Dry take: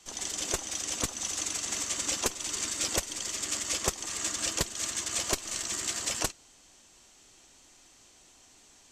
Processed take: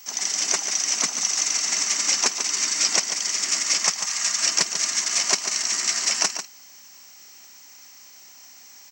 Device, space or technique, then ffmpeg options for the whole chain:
old television with a line whistle: -filter_complex "[0:a]highpass=f=400:p=1,asettb=1/sr,asplit=3[s0][s1][s2];[s0]atrim=end=1.484[s3];[s1]atrim=start=1.48:end=3.1,asetpts=PTS-STARTPTS,afade=t=in:d=0.004:c=qsin,afade=t=out:st=1.616:d=0.004:c=qsin,lowpass=f=9600:w=0.5412,lowpass=f=9600:w=1.3066[s4];[s2]atrim=start=3.096[s5];[s3][s4]acrossfade=d=0.004:c1=hsin:c2=qsin[s6];[s6][s5]acrossfade=d=0.004:c1=qsin:c2=hsin,asettb=1/sr,asplit=3[s7][s8][s9];[s7]atrim=end=3.834[s10];[s8]atrim=start=3.83:end=4.43,asetpts=PTS-STARTPTS,afade=t=in:d=0.004:c=qsin,afade=t=out:st=0.596:d=0.004:c=qsin,equalizer=f=350:t=o:w=0.93:g=-12[s11];[s9]atrim=start=4.426[s12];[s10][s11]acrossfade=d=0.004:c1=hsin:c2=qsin[s13];[s13][s12]acrossfade=d=0.004:c1=qsin:c2=hsin,highpass=f=180:w=0.5412,highpass=f=180:w=1.3066,equalizer=f=180:t=q:w=4:g=5,equalizer=f=330:t=q:w=4:g=-7,equalizer=f=510:t=q:w=4:g=-9,equalizer=f=2100:t=q:w=4:g=5,equalizer=f=3400:t=q:w=4:g=-7,equalizer=f=5500:t=q:w=4:g=9,lowpass=f=7400:w=0.5412,lowpass=f=7400:w=1.3066,aeval=exprs='val(0)+0.00224*sin(2*PI*15734*n/s)':c=same,aecho=1:1:144:0.355,volume=2.37"

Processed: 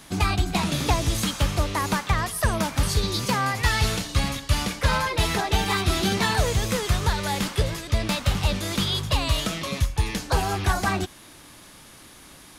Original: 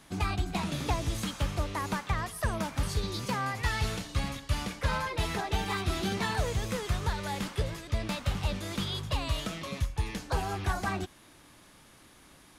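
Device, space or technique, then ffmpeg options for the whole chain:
presence and air boost: -af "equalizer=f=4600:t=o:w=1.5:g=2.5,highshelf=f=9700:g=6.5,volume=2.37"

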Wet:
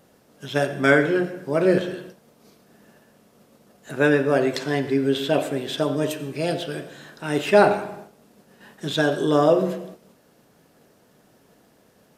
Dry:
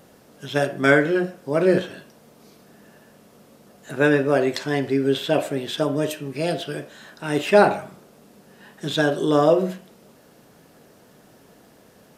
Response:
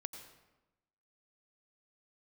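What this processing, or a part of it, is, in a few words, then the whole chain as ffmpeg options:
keyed gated reverb: -filter_complex "[0:a]asplit=3[s0][s1][s2];[1:a]atrim=start_sample=2205[s3];[s1][s3]afir=irnorm=-1:irlink=0[s4];[s2]apad=whole_len=536730[s5];[s4][s5]sidechaingate=range=0.0224:threshold=0.00398:ratio=16:detection=peak,volume=1.26[s6];[s0][s6]amix=inputs=2:normalize=0,volume=0.501"

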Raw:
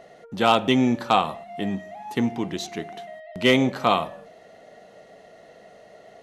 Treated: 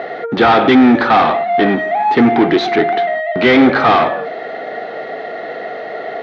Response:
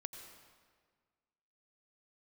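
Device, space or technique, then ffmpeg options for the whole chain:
overdrive pedal into a guitar cabinet: -filter_complex "[0:a]asplit=2[s0][s1];[s1]highpass=f=720:p=1,volume=35.5,asoftclip=type=tanh:threshold=0.531[s2];[s0][s2]amix=inputs=2:normalize=0,lowpass=f=1300:p=1,volume=0.501,highpass=94,equalizer=f=99:t=q:w=4:g=-10,equalizer=f=190:t=q:w=4:g=-10,equalizer=f=580:t=q:w=4:g=-9,equalizer=f=1000:t=q:w=4:g=-8,equalizer=f=2800:t=q:w=4:g=-8,lowpass=f=3900:w=0.5412,lowpass=f=3900:w=1.3066,volume=2.51"

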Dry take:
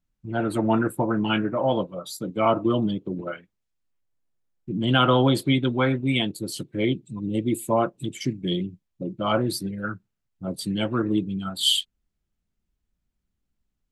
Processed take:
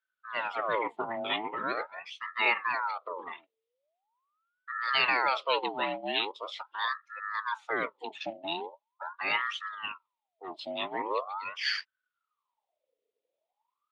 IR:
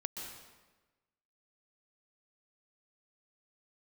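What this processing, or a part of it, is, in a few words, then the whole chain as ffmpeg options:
voice changer toy: -af "aeval=exprs='val(0)*sin(2*PI*990*n/s+990*0.55/0.42*sin(2*PI*0.42*n/s))':c=same,highpass=530,equalizer=f=750:t=q:w=4:g=-8,equalizer=f=1100:t=q:w=4:g=-4,equalizer=f=1600:t=q:w=4:g=-10,equalizer=f=3500:t=q:w=4:g=4,lowpass=f=3800:w=0.5412,lowpass=f=3800:w=1.3066"

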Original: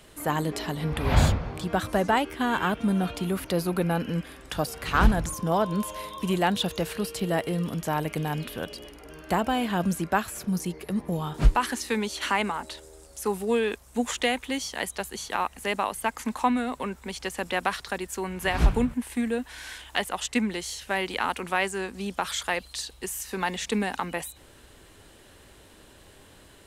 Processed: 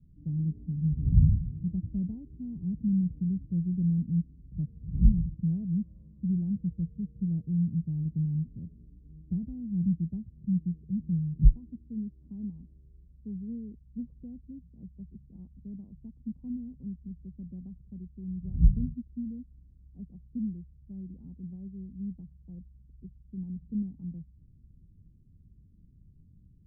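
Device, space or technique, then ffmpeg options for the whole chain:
the neighbour's flat through the wall: -af "lowpass=f=180:w=0.5412,lowpass=f=180:w=1.3066,equalizer=f=170:t=o:w=0.77:g=4.5"

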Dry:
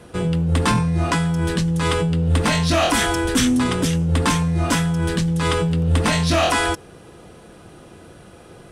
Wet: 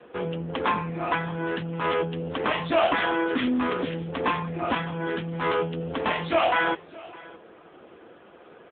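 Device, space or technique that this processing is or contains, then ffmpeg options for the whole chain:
satellite phone: -af "highpass=340,lowpass=3300,aecho=1:1:612:0.0841" -ar 8000 -c:a libopencore_amrnb -b:a 6700

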